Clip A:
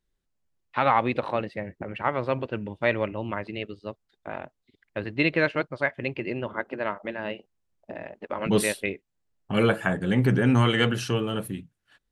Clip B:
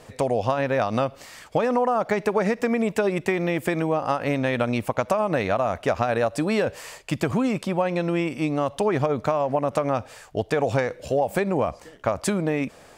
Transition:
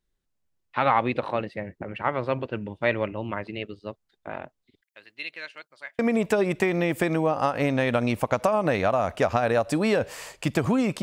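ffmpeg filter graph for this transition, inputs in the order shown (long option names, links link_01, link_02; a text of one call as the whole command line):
ffmpeg -i cue0.wav -i cue1.wav -filter_complex "[0:a]asettb=1/sr,asplit=3[link_01][link_02][link_03];[link_01]atrim=end=4.814[link_04];[link_02]atrim=start=4.81:end=5.99,asetpts=PTS-STARTPTS,afade=type=in:duration=0.004:curve=qsin,afade=type=out:start_time=1.176:duration=0.004:curve=qsin,aderivative[link_05];[link_03]atrim=start=5.986[link_06];[link_04][link_05]acrossfade=duration=0.004:curve1=hsin:curve2=qsin[link_07];[link_07][link_06]acrossfade=duration=0.004:curve1=qsin:curve2=hsin,apad=whole_dur=11.02,atrim=end=11.02,atrim=end=5.992[link_08];[1:a]atrim=start=2.648:end=7.68[link_09];[link_08][link_09]acrossfade=duration=0.004:curve1=hsin:curve2=hsin" out.wav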